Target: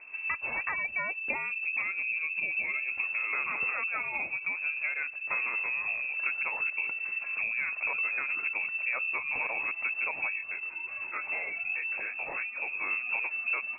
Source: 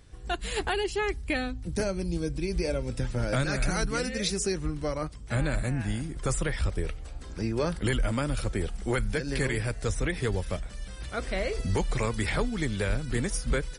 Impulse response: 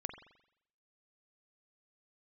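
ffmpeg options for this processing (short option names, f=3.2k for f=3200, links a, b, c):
-filter_complex "[0:a]acompressor=threshold=-35dB:ratio=6,asplit=3[a][b][c];[a]afade=t=out:st=10.3:d=0.02[d];[b]flanger=delay=18.5:depth=6.8:speed=2.5,afade=t=in:st=10.3:d=0.02,afade=t=out:st=12.82:d=0.02[e];[c]afade=t=in:st=12.82:d=0.02[f];[d][e][f]amix=inputs=3:normalize=0,lowpass=f=2.3k:t=q:w=0.5098,lowpass=f=2.3k:t=q:w=0.6013,lowpass=f=2.3k:t=q:w=0.9,lowpass=f=2.3k:t=q:w=2.563,afreqshift=-2700,volume=5.5dB"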